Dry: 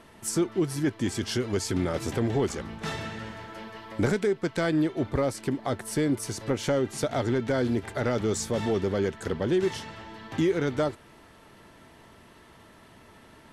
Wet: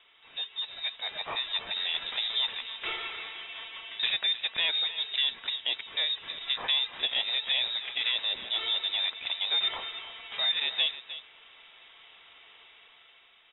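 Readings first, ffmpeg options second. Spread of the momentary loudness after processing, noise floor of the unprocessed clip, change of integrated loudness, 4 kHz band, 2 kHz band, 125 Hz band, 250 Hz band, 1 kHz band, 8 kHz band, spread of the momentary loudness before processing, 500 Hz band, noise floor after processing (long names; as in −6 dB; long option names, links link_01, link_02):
12 LU, −53 dBFS, −0.5 dB, +15.0 dB, +2.5 dB, below −30 dB, below −30 dB, −6.5 dB, below −40 dB, 10 LU, −21.0 dB, −58 dBFS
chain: -filter_complex "[0:a]highpass=frequency=290:poles=1,aemphasis=mode=production:type=bsi,dynaudnorm=framelen=230:gausssize=7:maxgain=7dB,asplit=2[link_01][link_02];[link_02]aecho=0:1:309:0.211[link_03];[link_01][link_03]amix=inputs=2:normalize=0,lowpass=frequency=3400:width_type=q:width=0.5098,lowpass=frequency=3400:width_type=q:width=0.6013,lowpass=frequency=3400:width_type=q:width=0.9,lowpass=frequency=3400:width_type=q:width=2.563,afreqshift=-4000,volume=-6dB"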